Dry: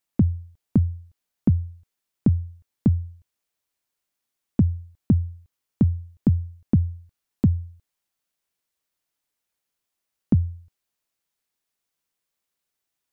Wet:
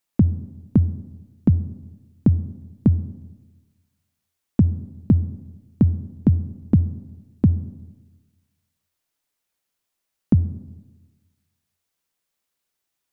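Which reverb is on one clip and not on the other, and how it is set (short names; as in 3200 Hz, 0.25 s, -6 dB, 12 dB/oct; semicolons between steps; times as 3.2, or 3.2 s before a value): digital reverb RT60 1.2 s, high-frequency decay 0.35×, pre-delay 15 ms, DRR 16 dB; gain +2.5 dB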